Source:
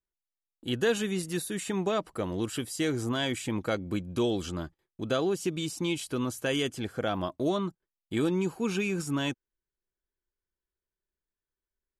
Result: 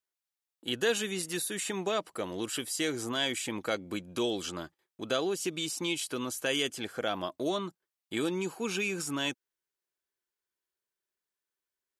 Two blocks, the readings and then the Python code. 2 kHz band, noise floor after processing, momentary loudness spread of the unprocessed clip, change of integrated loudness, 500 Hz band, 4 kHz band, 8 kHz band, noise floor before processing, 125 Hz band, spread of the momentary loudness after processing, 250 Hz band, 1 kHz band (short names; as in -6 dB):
+1.0 dB, under -85 dBFS, 6 LU, -2.0 dB, -2.5 dB, +2.5 dB, +3.5 dB, under -85 dBFS, -9.5 dB, 8 LU, -5.0 dB, -1.5 dB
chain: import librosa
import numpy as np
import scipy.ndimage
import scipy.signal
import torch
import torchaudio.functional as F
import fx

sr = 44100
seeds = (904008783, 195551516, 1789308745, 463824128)

y = fx.highpass(x, sr, hz=640.0, slope=6)
y = fx.dynamic_eq(y, sr, hz=1100.0, q=0.72, threshold_db=-43.0, ratio=4.0, max_db=-4)
y = F.gain(torch.from_numpy(y), 3.5).numpy()